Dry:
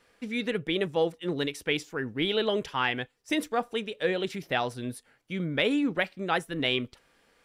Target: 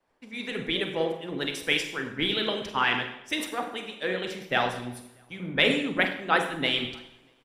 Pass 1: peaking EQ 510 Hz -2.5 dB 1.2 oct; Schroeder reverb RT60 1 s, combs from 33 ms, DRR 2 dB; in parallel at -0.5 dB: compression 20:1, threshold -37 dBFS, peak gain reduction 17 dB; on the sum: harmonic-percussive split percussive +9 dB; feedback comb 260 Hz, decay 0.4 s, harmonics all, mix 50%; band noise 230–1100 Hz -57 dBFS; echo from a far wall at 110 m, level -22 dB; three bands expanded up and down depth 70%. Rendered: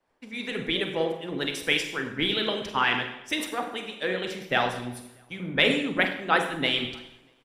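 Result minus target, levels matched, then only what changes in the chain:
compression: peak gain reduction -7.5 dB
change: compression 20:1, threshold -45 dBFS, peak gain reduction 24.5 dB

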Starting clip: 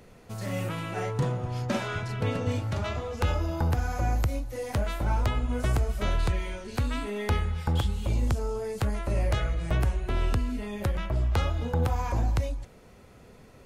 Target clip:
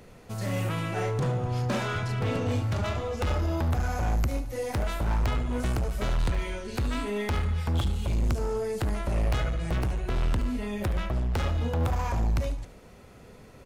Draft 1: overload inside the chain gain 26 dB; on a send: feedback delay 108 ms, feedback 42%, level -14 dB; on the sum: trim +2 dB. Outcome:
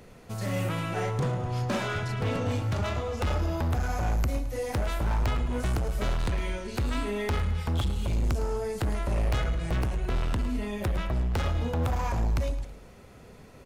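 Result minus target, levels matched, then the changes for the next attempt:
echo 35 ms late
change: feedback delay 73 ms, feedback 42%, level -14 dB

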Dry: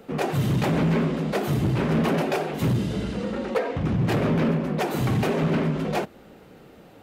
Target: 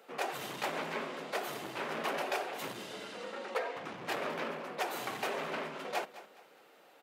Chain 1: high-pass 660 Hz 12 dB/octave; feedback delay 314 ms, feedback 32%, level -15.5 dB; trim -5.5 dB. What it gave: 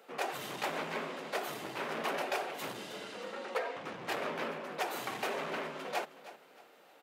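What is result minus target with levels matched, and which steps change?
echo 105 ms late
change: feedback delay 209 ms, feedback 32%, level -15.5 dB

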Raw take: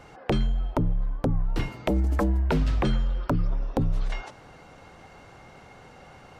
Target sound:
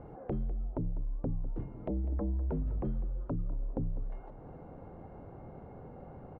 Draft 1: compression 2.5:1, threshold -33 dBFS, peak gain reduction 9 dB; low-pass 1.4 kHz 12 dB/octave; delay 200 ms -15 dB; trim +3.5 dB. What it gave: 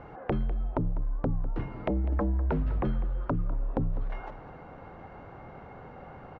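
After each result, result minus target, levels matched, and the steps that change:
1 kHz band +6.0 dB; compression: peak gain reduction -5 dB
change: low-pass 570 Hz 12 dB/octave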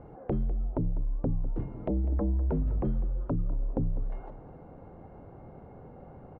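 compression: peak gain reduction -5 dB
change: compression 2.5:1, threshold -41.5 dBFS, peak gain reduction 14 dB

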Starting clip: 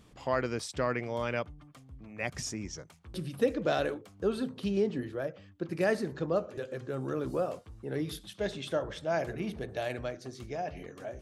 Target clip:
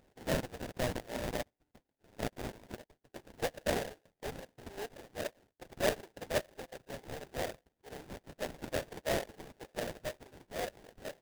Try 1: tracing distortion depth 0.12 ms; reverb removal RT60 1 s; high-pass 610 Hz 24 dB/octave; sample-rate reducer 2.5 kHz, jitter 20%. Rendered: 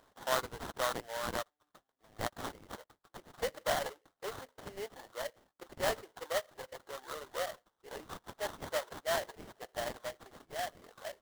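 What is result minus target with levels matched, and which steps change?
sample-rate reducer: distortion -32 dB
change: sample-rate reducer 1.2 kHz, jitter 20%

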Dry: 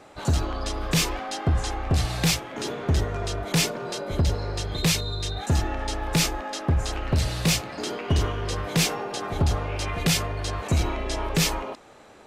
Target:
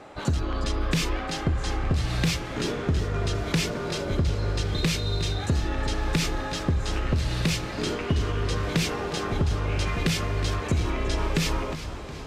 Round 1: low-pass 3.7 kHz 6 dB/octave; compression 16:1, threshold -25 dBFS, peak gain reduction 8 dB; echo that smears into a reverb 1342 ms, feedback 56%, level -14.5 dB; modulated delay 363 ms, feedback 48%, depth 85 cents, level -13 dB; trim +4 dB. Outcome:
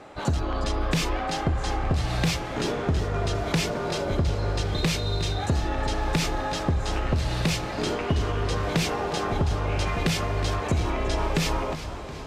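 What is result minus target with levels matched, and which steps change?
1 kHz band +4.0 dB
add after low-pass: dynamic bell 750 Hz, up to -7 dB, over -45 dBFS, Q 1.5

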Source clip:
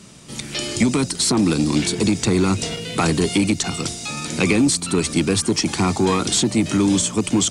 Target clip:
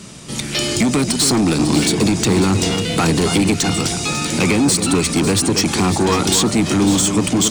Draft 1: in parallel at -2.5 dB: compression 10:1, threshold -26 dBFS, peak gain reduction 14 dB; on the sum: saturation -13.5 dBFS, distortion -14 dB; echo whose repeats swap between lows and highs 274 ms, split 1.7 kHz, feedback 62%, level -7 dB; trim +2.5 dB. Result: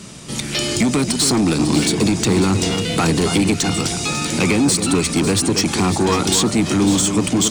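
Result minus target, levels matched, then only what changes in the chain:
compression: peak gain reduction +7.5 dB
change: compression 10:1, threshold -17.5 dBFS, peak gain reduction 6.5 dB

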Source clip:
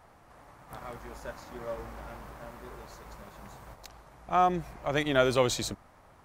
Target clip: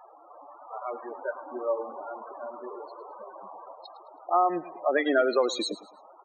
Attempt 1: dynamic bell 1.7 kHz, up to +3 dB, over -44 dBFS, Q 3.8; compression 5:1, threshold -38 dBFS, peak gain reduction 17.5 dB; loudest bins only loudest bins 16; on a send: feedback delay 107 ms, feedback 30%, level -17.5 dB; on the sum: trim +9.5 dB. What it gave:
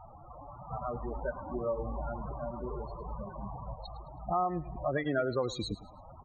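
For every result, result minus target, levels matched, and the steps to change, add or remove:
compression: peak gain reduction +8 dB; 250 Hz band +3.5 dB
change: compression 5:1, threshold -28.5 dBFS, peak gain reduction 10 dB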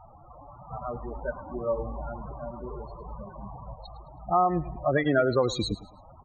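250 Hz band +2.5 dB
add after dynamic bell: high-pass 280 Hz 24 dB/octave

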